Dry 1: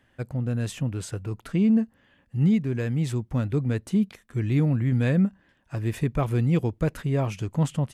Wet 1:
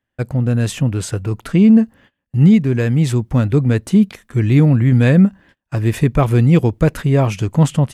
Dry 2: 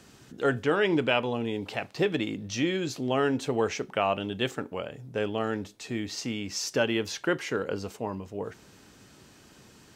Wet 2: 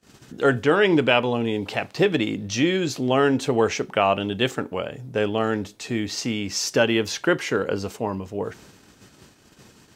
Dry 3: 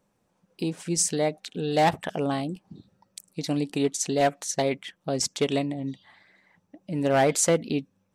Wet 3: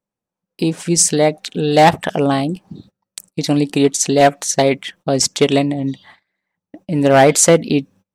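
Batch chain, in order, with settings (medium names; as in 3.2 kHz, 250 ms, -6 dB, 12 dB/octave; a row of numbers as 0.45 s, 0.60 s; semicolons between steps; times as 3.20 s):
gate -53 dBFS, range -26 dB; peak normalisation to -3 dBFS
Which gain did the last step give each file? +10.5 dB, +6.5 dB, +11.0 dB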